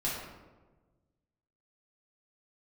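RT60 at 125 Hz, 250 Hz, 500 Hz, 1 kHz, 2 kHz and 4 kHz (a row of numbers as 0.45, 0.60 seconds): 1.9, 1.6, 1.4, 1.1, 0.85, 0.65 seconds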